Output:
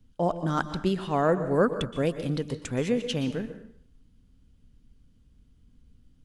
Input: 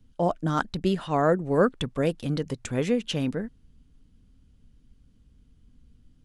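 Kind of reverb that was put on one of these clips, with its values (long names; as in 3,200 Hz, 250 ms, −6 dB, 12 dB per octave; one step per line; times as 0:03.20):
dense smooth reverb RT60 0.59 s, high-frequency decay 1×, pre-delay 110 ms, DRR 10.5 dB
level −1.5 dB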